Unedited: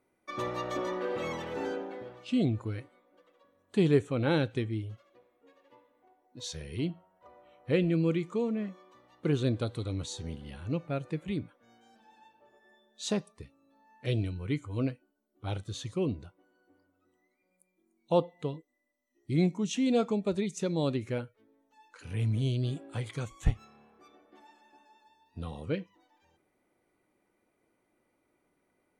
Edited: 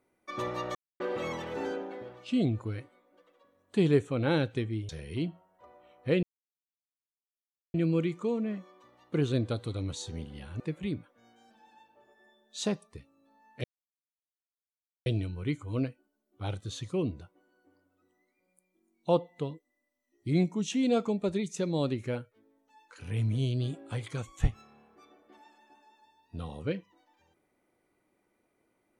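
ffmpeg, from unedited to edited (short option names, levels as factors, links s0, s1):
-filter_complex "[0:a]asplit=7[s0][s1][s2][s3][s4][s5][s6];[s0]atrim=end=0.75,asetpts=PTS-STARTPTS,afade=t=out:st=0.746:d=0.004:c=hsin[s7];[s1]atrim=start=0.75:end=1,asetpts=PTS-STARTPTS,volume=0[s8];[s2]atrim=start=1:end=4.892,asetpts=PTS-STARTPTS,afade=t=in:d=0.004:c=hsin[s9];[s3]atrim=start=6.508:end=7.85,asetpts=PTS-STARTPTS,afade=t=out:st=1.338:d=0.004:c=hsin,apad=pad_dur=1.51[s10];[s4]atrim=start=7.85:end=10.712,asetpts=PTS-STARTPTS,afade=t=in:d=0.004:c=hsin[s11];[s5]atrim=start=11.048:end=14.09,asetpts=PTS-STARTPTS,afade=t=out:st=3.038:d=0.004:c=hsin,apad=pad_dur=1.42[s12];[s6]atrim=start=14.09,asetpts=PTS-STARTPTS,afade=t=in:d=0.004:c=hsin[s13];[s7][s8][s9]concat=n=3:v=0:a=1[s14];[s10][s11]concat=n=2:v=0:a=1[s15];[s14][s15]acrossfade=d=0.004:c1=hsin:c2=hsin[s16];[s12][s13]concat=n=2:v=0:a=1[s17];[s16][s17]acrossfade=d=0.004:c1=hsin:c2=hsin"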